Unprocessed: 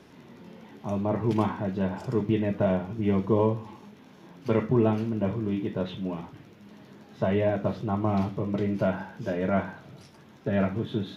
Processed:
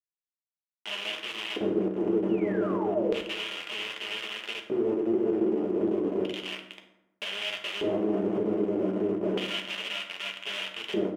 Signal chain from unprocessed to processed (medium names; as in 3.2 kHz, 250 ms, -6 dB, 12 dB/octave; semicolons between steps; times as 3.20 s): companding laws mixed up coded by A; bouncing-ball echo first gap 420 ms, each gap 0.7×, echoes 5; compression 20:1, threshold -27 dBFS, peak gain reduction 11.5 dB; bit crusher 5-bit; peaking EQ 3 kHz +9 dB 0.61 oct; band-stop 1.6 kHz, Q 23; painted sound fall, 2.29–3.26 s, 310–3000 Hz -28 dBFS; fifteen-band graphic EQ 100 Hz -5 dB, 400 Hz +7 dB, 4 kHz -8 dB; LFO band-pass square 0.32 Hz 360–3000 Hz; peak limiter -26.5 dBFS, peak gain reduction 9 dB; reverberation RT60 0.95 s, pre-delay 5 ms, DRR 2.5 dB; trim +5 dB